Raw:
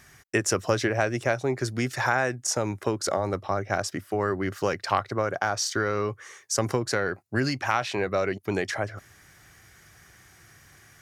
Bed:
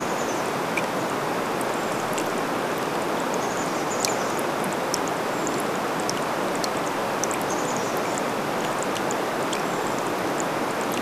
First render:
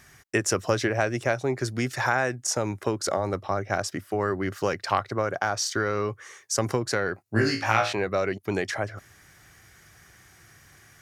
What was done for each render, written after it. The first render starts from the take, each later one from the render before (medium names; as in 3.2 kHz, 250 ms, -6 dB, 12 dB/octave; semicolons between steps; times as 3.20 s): 7.24–7.93 s: flutter echo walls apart 3.1 m, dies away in 0.34 s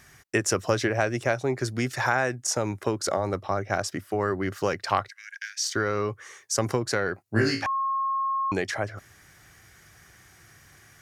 5.08–5.64 s: rippled Chebyshev high-pass 1.6 kHz, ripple 3 dB; 7.66–8.52 s: bleep 1.08 kHz -23.5 dBFS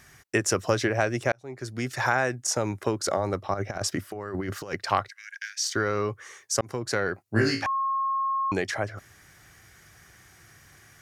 1.32–2.05 s: fade in; 3.54–4.76 s: compressor with a negative ratio -30 dBFS, ratio -0.5; 6.61–7.07 s: fade in equal-power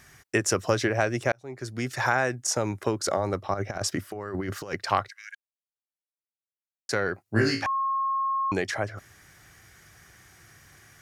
5.35–6.89 s: mute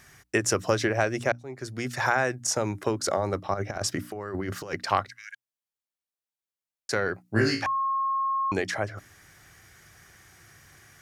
hum notches 60/120/180/240/300 Hz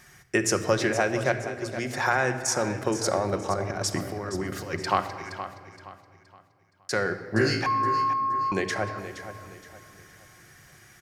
feedback delay 470 ms, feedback 35%, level -12 dB; simulated room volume 3600 m³, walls mixed, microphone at 0.95 m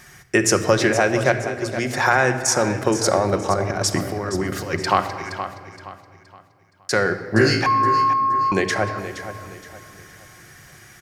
trim +7 dB; peak limiter -3 dBFS, peak gain reduction 2 dB